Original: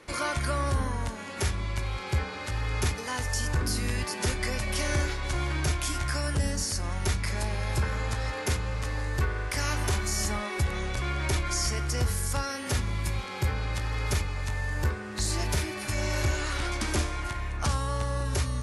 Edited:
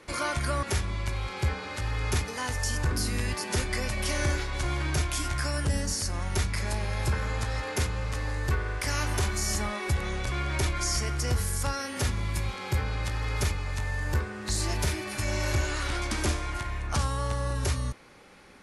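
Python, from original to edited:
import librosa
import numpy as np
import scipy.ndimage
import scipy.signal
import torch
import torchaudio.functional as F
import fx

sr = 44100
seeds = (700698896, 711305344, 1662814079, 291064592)

y = fx.edit(x, sr, fx.cut(start_s=0.63, length_s=0.7), tone=tone)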